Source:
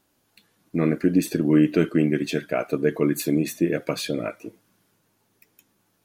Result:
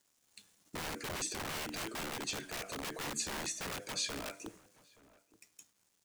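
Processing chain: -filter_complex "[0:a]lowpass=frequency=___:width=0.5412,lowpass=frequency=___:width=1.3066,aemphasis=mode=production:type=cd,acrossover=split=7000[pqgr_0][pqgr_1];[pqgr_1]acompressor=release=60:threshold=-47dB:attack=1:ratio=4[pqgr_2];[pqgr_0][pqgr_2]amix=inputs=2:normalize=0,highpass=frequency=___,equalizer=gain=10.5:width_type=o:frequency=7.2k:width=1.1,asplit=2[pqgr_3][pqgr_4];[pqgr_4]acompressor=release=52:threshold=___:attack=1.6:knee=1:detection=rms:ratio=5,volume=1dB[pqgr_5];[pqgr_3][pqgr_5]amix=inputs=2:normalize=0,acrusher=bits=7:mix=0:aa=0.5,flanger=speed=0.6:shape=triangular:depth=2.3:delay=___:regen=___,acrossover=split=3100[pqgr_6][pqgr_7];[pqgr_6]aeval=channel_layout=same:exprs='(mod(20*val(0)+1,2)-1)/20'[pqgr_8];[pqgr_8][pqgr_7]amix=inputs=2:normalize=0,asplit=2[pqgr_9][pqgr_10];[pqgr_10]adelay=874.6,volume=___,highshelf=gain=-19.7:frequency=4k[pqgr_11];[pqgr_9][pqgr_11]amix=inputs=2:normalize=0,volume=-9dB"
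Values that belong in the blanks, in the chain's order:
9.5k, 9.5k, 62, -34dB, 8.5, 88, -21dB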